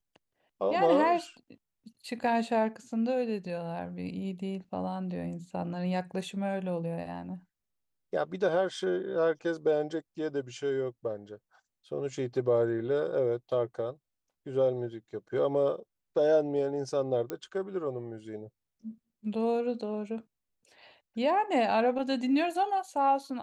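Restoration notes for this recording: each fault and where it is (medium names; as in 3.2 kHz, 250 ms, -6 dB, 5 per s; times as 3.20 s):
17.30 s: pop -20 dBFS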